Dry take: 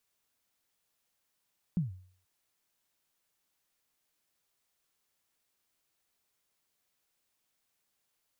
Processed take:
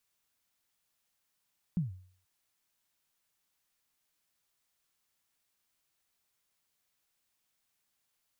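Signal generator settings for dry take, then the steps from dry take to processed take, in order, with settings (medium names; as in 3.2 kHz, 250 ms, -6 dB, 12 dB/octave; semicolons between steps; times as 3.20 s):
kick drum length 0.48 s, from 190 Hz, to 92 Hz, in 144 ms, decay 0.51 s, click off, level -23.5 dB
peaking EQ 440 Hz -4 dB 1.5 oct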